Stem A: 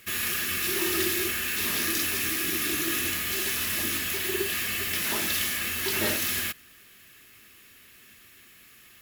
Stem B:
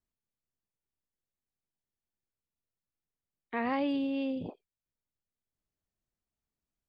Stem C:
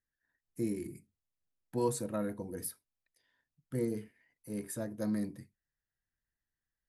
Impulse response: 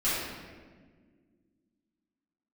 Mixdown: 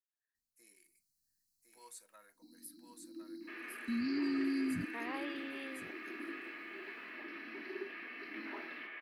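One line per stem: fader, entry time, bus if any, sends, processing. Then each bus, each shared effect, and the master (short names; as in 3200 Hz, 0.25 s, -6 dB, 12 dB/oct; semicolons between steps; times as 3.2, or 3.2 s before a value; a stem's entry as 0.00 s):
-1.0 dB, 2.35 s, bus A, no send, echo send -11.5 dB, elliptic band-pass 330–2300 Hz, stop band 50 dB
-3.5 dB, 0.35 s, bus A, no send, echo send -19 dB, AGC gain up to 12 dB; tilt shelf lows -6 dB
-11.5 dB, 0.00 s, no bus, no send, echo send -3.5 dB, HPF 1500 Hz 12 dB/oct
bus A: 0.0 dB, brick-wall FIR band-stop 320–3900 Hz; limiter -30.5 dBFS, peak gain reduction 8.5 dB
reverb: off
echo: echo 1.057 s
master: dry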